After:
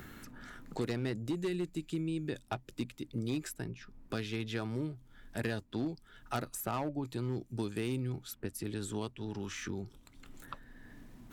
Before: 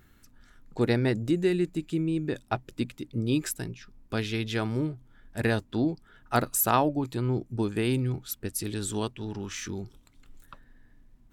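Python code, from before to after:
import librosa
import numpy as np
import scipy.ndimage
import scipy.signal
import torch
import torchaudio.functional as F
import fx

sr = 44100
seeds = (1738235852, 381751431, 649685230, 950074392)

y = np.clip(x, -10.0 ** (-20.0 / 20.0), 10.0 ** (-20.0 / 20.0))
y = fx.band_squash(y, sr, depth_pct=70)
y = F.gain(torch.from_numpy(y), -8.0).numpy()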